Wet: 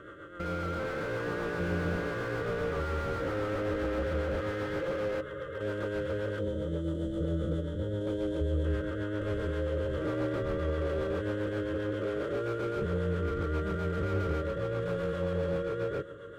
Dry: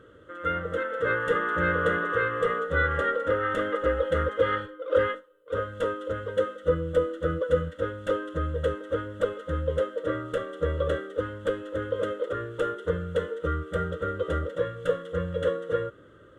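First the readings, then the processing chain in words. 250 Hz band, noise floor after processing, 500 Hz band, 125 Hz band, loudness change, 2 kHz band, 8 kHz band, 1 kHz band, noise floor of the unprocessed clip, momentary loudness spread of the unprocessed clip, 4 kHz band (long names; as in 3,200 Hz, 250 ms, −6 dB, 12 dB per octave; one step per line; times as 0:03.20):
+1.5 dB, −42 dBFS, −5.5 dB, +0.5 dB, −4.5 dB, −8.5 dB, can't be measured, −8.5 dB, −52 dBFS, 6 LU, −4.0 dB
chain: spectrum averaged block by block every 400 ms
notch comb filter 250 Hz
echo with a time of its own for lows and highs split 340 Hz, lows 112 ms, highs 427 ms, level −15 dB
in parallel at 0 dB: brickwall limiter −27.5 dBFS, peak gain reduction 10 dB
on the sum: rotating-speaker cabinet horn 7.5 Hz
gain on a spectral selection 0:06.39–0:08.65, 990–3,000 Hz −11 dB
notch filter 490 Hz, Q 12
slew-rate limiting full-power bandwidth 20 Hz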